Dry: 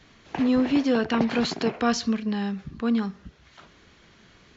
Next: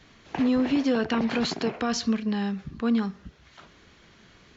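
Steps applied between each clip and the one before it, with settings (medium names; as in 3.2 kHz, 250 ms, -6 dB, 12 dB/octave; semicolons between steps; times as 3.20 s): peak limiter -16 dBFS, peak gain reduction 7.5 dB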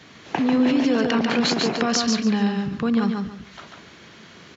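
high-pass 120 Hz 12 dB/octave; in parallel at -0.5 dB: compressor with a negative ratio -30 dBFS, ratio -1; on the sum: feedback delay 142 ms, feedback 24%, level -4 dB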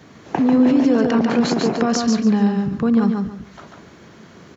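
peaking EQ 3.2 kHz -11.5 dB 2.2 oct; trim +5 dB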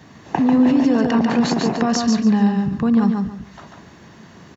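comb 1.1 ms, depth 33%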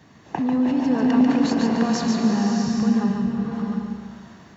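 swelling reverb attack 670 ms, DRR 1 dB; trim -6.5 dB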